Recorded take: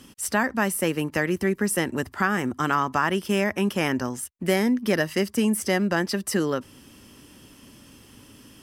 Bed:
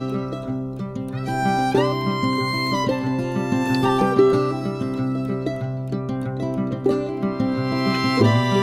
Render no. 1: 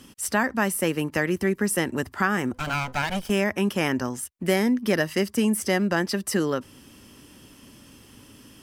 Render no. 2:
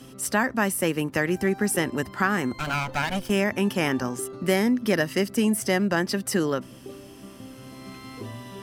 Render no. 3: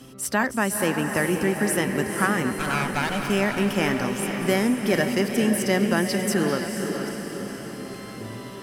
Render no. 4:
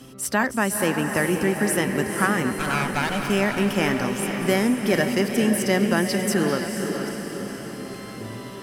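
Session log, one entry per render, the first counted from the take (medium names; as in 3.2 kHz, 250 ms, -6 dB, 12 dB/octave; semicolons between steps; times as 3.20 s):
2.53–3.30 s: comb filter that takes the minimum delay 1.3 ms
add bed -21.5 dB
chunks repeated in reverse 394 ms, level -12 dB; on a send: echo that smears into a reverb 483 ms, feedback 58%, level -6 dB
trim +1 dB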